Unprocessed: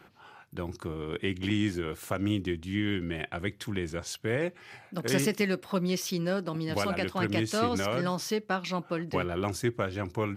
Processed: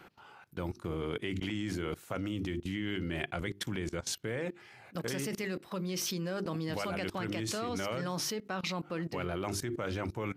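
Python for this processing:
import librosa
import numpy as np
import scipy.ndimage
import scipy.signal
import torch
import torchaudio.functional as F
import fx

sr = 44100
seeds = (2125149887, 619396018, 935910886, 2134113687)

y = fx.hum_notches(x, sr, base_hz=50, count=8)
y = fx.level_steps(y, sr, step_db=20)
y = y * librosa.db_to_amplitude(5.0)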